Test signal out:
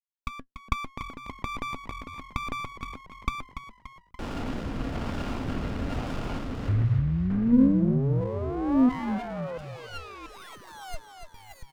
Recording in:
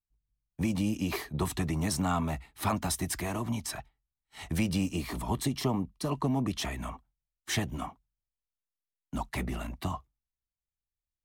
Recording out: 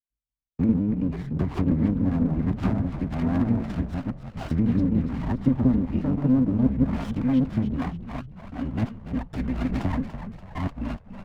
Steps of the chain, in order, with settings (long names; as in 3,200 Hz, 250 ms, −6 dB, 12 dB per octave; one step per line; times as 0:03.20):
delay that plays each chunk backwards 684 ms, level −1 dB
low-pass filter 3,000 Hz 12 dB per octave
noise gate with hold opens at −41 dBFS
treble cut that deepens with the level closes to 550 Hz, closed at −25.5 dBFS
dynamic equaliser 380 Hz, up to −8 dB, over −45 dBFS, Q 1.1
hollow resonant body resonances 260/1,400/2,100 Hz, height 12 dB, ringing for 80 ms
rotating-speaker cabinet horn 1.1 Hz
echo with shifted repeats 288 ms, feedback 50%, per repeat −43 Hz, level −10 dB
windowed peak hold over 17 samples
level +7.5 dB